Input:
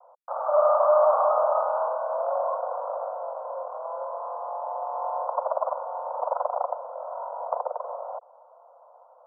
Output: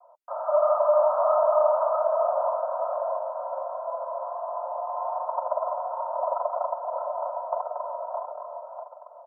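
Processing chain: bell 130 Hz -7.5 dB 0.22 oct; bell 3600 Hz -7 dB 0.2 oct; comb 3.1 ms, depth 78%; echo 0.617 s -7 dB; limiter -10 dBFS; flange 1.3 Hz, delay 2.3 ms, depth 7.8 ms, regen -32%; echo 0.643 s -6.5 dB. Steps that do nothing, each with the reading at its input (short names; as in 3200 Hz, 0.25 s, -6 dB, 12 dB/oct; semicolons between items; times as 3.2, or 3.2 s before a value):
bell 130 Hz: input band starts at 430 Hz; bell 3600 Hz: input band ends at 1500 Hz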